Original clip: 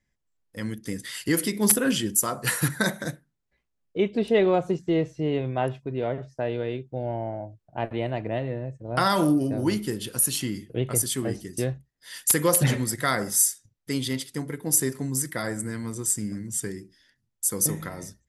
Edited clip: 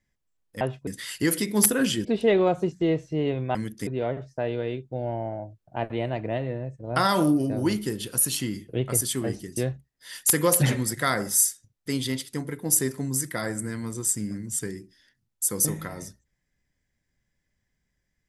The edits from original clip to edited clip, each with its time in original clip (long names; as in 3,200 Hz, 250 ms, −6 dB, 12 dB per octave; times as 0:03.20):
0:00.61–0:00.93: swap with 0:05.62–0:05.88
0:02.11–0:04.12: remove